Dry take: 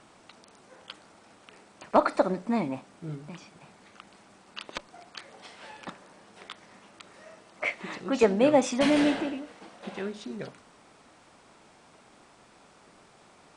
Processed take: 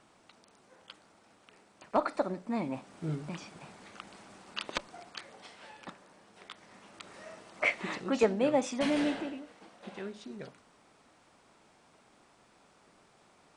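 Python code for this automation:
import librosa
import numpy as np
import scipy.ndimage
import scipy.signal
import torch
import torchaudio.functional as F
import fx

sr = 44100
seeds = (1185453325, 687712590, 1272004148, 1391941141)

y = fx.gain(x, sr, db=fx.line((2.5, -7.0), (3.04, 2.5), (4.73, 2.5), (5.7, -5.5), (6.43, -5.5), (7.13, 1.5), (7.88, 1.5), (8.37, -6.5)))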